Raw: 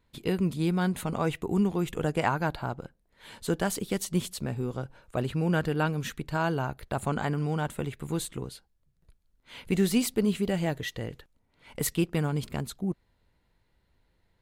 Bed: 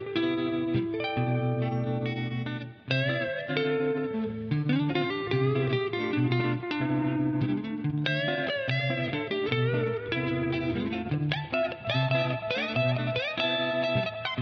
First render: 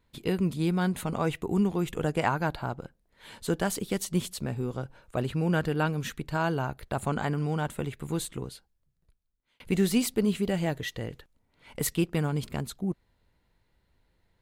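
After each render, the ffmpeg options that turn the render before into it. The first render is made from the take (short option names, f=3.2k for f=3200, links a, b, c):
-filter_complex "[0:a]asplit=2[a][b];[a]atrim=end=9.6,asetpts=PTS-STARTPTS,afade=t=out:st=8.48:d=1.12[c];[b]atrim=start=9.6,asetpts=PTS-STARTPTS,afade=t=in:d=0.004:c=hsin[d];[c][d]concat=n=2:v=0:a=1"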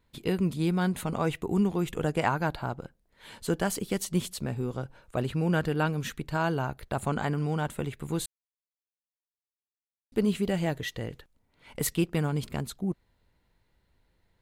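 -filter_complex "[0:a]asettb=1/sr,asplit=3[a][b][c];[a]atrim=end=3.414[d];[b]atrim=start=3.41:end=4.02,asetpts=PTS-STARTPTS,afade=t=in:d=0.004:c=qsin,afade=t=out:st=0.606:d=0.004:c=qsin,bandreject=f=3.7k:w=14[e];[c]atrim=start=4.016[f];[d][e]acrossfade=d=0.004:c1=hsin:c2=qsin[g];[g][f]acrossfade=d=0.004:c1=qsin:c2=hsin,asplit=3[h][i][j];[h]atrim=end=8.26,asetpts=PTS-STARTPTS,afade=t=out:st=8.256:d=0.004:c=hsin[k];[i]atrim=start=8.26:end=10.12,asetpts=PTS-STARTPTS,volume=0[l];[j]atrim=start=10.12,asetpts=PTS-STARTPTS,afade=t=in:d=0.004:c=hsin[m];[k][l][m]concat=n=3:v=0:a=1"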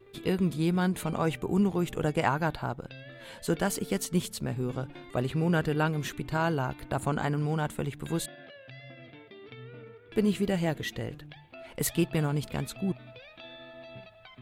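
-filter_complex "[1:a]volume=-19.5dB[a];[0:a][a]amix=inputs=2:normalize=0"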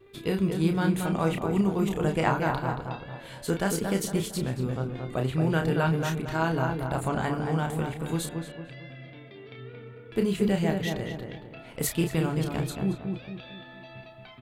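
-filter_complex "[0:a]asplit=2[a][b];[b]adelay=31,volume=-6dB[c];[a][c]amix=inputs=2:normalize=0,asplit=2[d][e];[e]adelay=227,lowpass=f=1.9k:p=1,volume=-4.5dB,asplit=2[f][g];[g]adelay=227,lowpass=f=1.9k:p=1,volume=0.43,asplit=2[h][i];[i]adelay=227,lowpass=f=1.9k:p=1,volume=0.43,asplit=2[j][k];[k]adelay=227,lowpass=f=1.9k:p=1,volume=0.43,asplit=2[l][m];[m]adelay=227,lowpass=f=1.9k:p=1,volume=0.43[n];[d][f][h][j][l][n]amix=inputs=6:normalize=0"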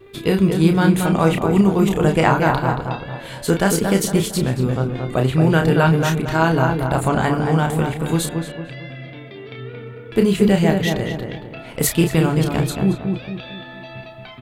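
-af "volume=10dB,alimiter=limit=-1dB:level=0:latency=1"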